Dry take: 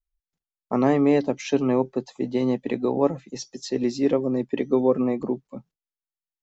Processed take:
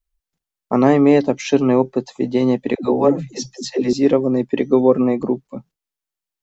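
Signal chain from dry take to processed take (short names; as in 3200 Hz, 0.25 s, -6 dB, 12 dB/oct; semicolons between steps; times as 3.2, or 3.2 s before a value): 2.75–3.93 dispersion lows, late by 0.107 s, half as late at 300 Hz; gain +6.5 dB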